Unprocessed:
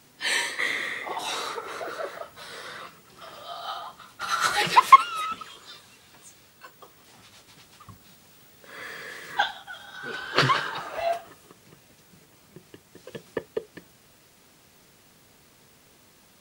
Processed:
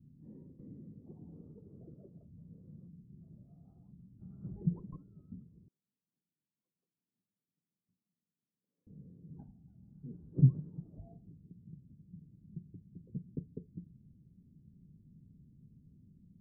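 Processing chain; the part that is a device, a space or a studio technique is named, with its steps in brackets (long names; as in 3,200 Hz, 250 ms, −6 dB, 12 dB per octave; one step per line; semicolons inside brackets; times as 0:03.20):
the neighbour's flat through the wall (low-pass filter 210 Hz 24 dB per octave; parametric band 170 Hz +4 dB)
0:05.68–0:08.87: Bessel high-pass filter 1,900 Hz, order 2
level +3.5 dB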